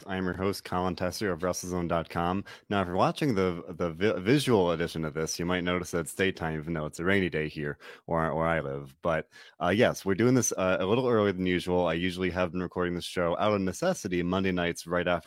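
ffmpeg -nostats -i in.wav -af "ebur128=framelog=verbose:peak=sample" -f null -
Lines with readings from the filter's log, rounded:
Integrated loudness:
  I:         -28.7 LUFS
  Threshold: -38.7 LUFS
Loudness range:
  LRA:         3.5 LU
  Threshold: -48.5 LUFS
  LRA low:   -30.2 LUFS
  LRA high:  -26.7 LUFS
Sample peak:
  Peak:       -9.0 dBFS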